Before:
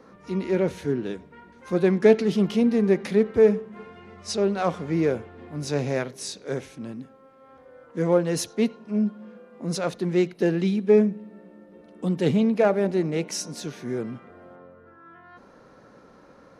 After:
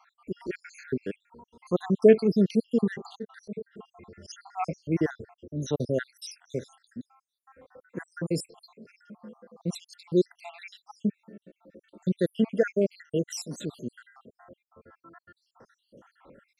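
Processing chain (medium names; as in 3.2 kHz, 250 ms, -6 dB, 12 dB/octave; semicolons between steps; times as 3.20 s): random holes in the spectrogram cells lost 78%; 3.09–4.33 s: slow attack 116 ms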